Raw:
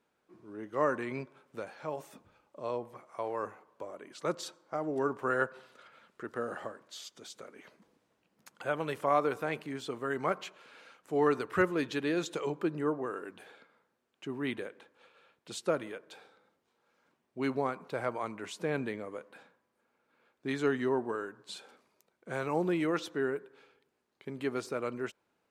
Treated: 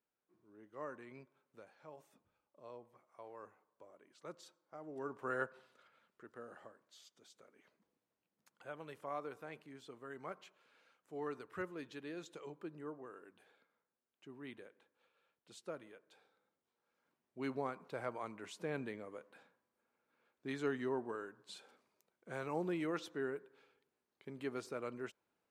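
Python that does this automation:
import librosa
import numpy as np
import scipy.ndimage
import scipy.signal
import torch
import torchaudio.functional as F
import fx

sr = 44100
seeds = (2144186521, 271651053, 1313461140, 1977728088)

y = fx.gain(x, sr, db=fx.line((4.74, -17.0), (5.35, -8.0), (6.32, -15.5), (16.1, -15.5), (17.54, -8.0)))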